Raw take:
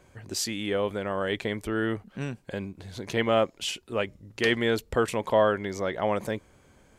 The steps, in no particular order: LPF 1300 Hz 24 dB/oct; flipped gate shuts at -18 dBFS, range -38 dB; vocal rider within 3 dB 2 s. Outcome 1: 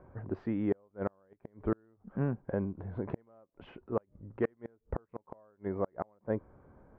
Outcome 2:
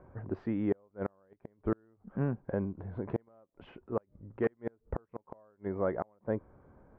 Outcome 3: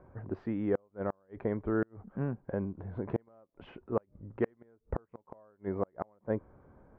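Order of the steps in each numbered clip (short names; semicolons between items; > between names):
vocal rider > LPF > flipped gate; LPF > vocal rider > flipped gate; LPF > flipped gate > vocal rider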